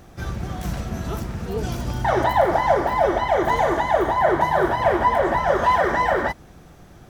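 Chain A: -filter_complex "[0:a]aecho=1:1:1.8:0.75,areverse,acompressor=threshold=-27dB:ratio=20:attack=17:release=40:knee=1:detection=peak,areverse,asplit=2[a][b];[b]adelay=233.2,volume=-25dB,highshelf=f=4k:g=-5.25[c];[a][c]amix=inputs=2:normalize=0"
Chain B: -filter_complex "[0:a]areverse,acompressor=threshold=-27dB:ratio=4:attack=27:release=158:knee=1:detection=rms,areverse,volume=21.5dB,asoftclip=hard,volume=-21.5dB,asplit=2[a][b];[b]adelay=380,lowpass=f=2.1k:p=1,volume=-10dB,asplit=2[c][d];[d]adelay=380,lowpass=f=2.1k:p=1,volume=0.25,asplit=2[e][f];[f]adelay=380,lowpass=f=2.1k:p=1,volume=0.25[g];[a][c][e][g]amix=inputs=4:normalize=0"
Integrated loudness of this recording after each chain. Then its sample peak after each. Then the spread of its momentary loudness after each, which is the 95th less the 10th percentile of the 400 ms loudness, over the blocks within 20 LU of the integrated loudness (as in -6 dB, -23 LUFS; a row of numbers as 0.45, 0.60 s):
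-28.0, -29.0 LUFS; -14.5, -19.0 dBFS; 3, 4 LU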